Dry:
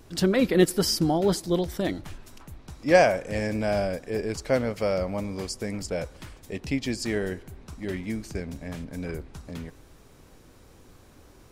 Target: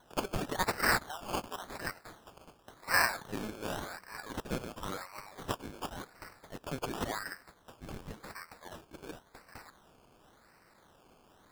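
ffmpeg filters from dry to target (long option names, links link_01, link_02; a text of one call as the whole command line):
ffmpeg -i in.wav -af "highpass=frequency=1200:width=0.5412,highpass=frequency=1200:width=1.3066,acrusher=samples=18:mix=1:aa=0.000001:lfo=1:lforange=10.8:lforate=0.92" out.wav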